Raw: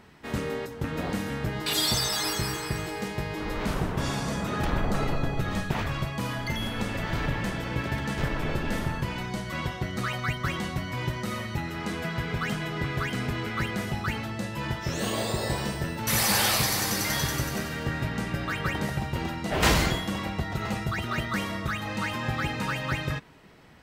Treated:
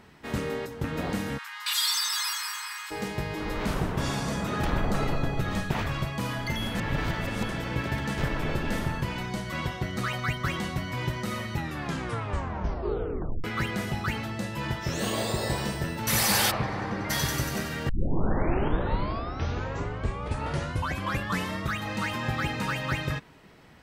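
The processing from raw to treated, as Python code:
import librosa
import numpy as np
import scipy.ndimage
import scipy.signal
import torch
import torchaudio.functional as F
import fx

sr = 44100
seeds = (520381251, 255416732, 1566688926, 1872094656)

y = fx.steep_highpass(x, sr, hz=930.0, slope=72, at=(1.37, 2.9), fade=0.02)
y = fx.lowpass(y, sr, hz=1500.0, slope=12, at=(16.5, 17.09), fade=0.02)
y = fx.edit(y, sr, fx.reverse_span(start_s=6.75, length_s=0.74),
    fx.tape_stop(start_s=11.58, length_s=1.86),
    fx.tape_start(start_s=17.89, length_s=3.77), tone=tone)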